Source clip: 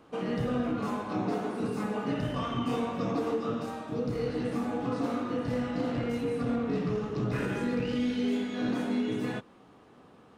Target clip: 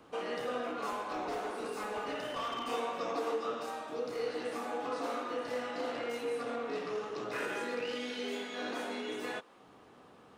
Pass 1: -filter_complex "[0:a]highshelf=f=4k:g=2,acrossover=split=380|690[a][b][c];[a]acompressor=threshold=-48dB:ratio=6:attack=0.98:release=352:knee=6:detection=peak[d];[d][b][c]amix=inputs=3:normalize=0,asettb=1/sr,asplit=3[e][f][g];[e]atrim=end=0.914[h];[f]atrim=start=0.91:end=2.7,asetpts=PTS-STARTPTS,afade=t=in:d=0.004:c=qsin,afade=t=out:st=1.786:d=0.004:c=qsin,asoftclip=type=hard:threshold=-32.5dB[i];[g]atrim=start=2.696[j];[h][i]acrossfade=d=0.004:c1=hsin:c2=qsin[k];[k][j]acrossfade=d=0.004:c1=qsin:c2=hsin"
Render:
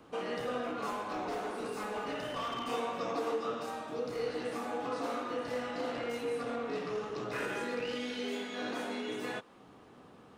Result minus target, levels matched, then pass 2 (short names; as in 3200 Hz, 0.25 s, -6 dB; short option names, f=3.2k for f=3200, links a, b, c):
compressor: peak gain reduction -9 dB
-filter_complex "[0:a]highshelf=f=4k:g=2,acrossover=split=380|690[a][b][c];[a]acompressor=threshold=-59dB:ratio=6:attack=0.98:release=352:knee=6:detection=peak[d];[d][b][c]amix=inputs=3:normalize=0,asettb=1/sr,asplit=3[e][f][g];[e]atrim=end=0.914[h];[f]atrim=start=0.91:end=2.7,asetpts=PTS-STARTPTS,afade=t=in:d=0.004:c=qsin,afade=t=out:st=1.786:d=0.004:c=qsin,asoftclip=type=hard:threshold=-32.5dB[i];[g]atrim=start=2.696[j];[h][i]acrossfade=d=0.004:c1=hsin:c2=qsin[k];[k][j]acrossfade=d=0.004:c1=qsin:c2=hsin"